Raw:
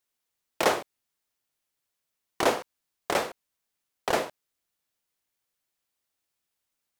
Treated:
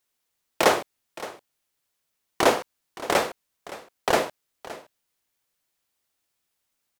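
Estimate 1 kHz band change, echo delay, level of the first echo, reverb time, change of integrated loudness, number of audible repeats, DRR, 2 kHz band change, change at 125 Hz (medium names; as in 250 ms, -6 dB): +4.5 dB, 568 ms, -17.0 dB, no reverb, +4.5 dB, 1, no reverb, +4.5 dB, +4.5 dB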